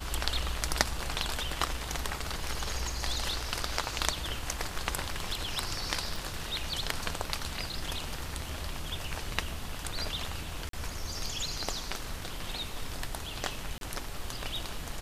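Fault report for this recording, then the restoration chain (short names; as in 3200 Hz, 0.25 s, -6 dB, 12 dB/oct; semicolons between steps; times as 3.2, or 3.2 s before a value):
6.16 pop
10.69–10.73 gap 43 ms
13.78–13.81 gap 32 ms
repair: de-click; interpolate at 10.69, 43 ms; interpolate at 13.78, 32 ms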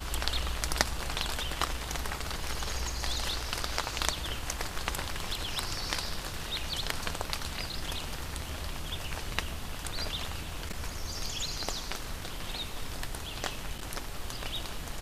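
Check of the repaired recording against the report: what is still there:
none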